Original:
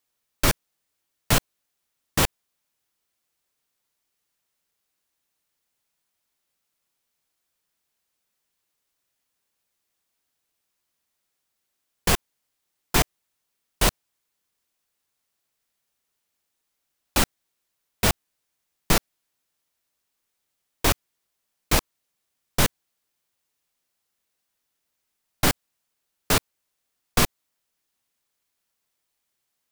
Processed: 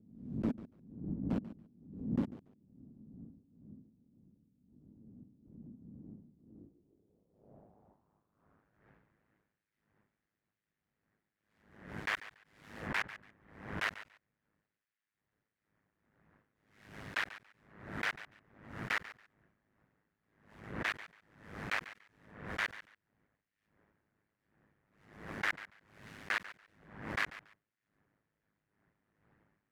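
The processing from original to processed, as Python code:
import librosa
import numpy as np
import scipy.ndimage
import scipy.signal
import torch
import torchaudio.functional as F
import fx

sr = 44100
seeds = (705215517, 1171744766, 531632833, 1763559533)

p1 = fx.tracing_dist(x, sr, depth_ms=0.13)
p2 = fx.dmg_wind(p1, sr, seeds[0], corner_hz=120.0, level_db=-41.0)
p3 = p2 + fx.echo_feedback(p2, sr, ms=142, feedback_pct=18, wet_db=-15.0, dry=0)
p4 = p3 * np.sin(2.0 * np.pi * 52.0 * np.arange(len(p3)) / sr)
p5 = fx.filter_sweep_bandpass(p4, sr, from_hz=240.0, to_hz=1800.0, start_s=6.36, end_s=8.85, q=3.1)
y = fx.pre_swell(p5, sr, db_per_s=80.0)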